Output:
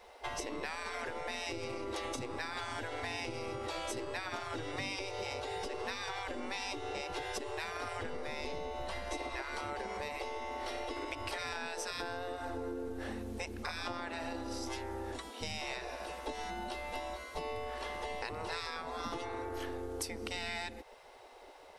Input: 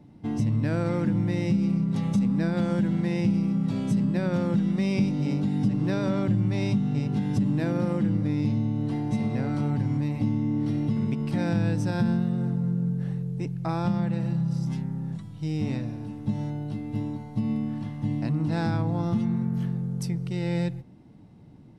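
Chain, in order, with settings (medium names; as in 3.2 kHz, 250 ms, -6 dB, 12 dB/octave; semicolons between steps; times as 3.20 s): spectral gate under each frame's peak -20 dB weak; 8.05–9.42 s: bass shelf 210 Hz +8 dB; compression 6:1, threshold -49 dBFS, peak gain reduction 13 dB; trim +12.5 dB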